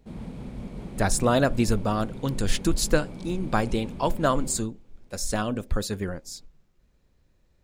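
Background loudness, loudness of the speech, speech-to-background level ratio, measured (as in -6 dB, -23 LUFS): -39.5 LUFS, -26.5 LUFS, 13.0 dB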